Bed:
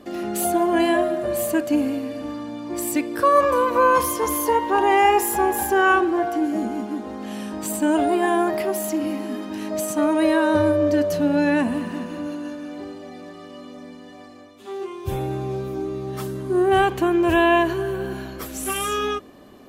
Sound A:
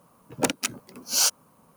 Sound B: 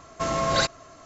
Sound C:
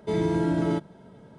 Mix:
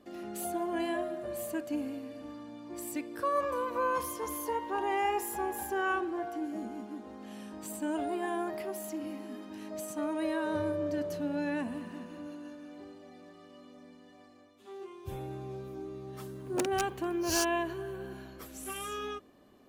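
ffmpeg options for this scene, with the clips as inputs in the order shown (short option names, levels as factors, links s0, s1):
-filter_complex "[0:a]volume=0.2[s0];[3:a]acompressor=threshold=0.0126:ratio=6:attack=3.2:release=140:knee=1:detection=peak,atrim=end=1.38,asetpts=PTS-STARTPTS,volume=0.335,afade=t=in:d=0.004:c=hsin,afade=t=out:st=1.376:d=0.004:c=hsin,adelay=10390[s1];[1:a]atrim=end=1.76,asetpts=PTS-STARTPTS,volume=0.266,afade=t=in:d=0.004:c=hsin,afade=t=out:st=1.756:d=0.004:c=hsin,adelay=16150[s2];[s0][s1][s2]amix=inputs=3:normalize=0"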